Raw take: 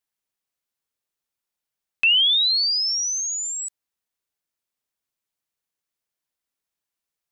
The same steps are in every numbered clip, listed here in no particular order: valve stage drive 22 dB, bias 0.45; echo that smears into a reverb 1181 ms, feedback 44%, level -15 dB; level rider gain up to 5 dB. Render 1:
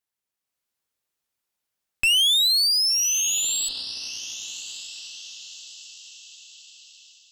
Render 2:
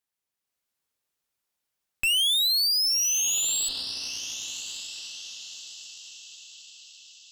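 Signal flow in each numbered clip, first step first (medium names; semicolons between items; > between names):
echo that smears into a reverb > valve stage > level rider; level rider > echo that smears into a reverb > valve stage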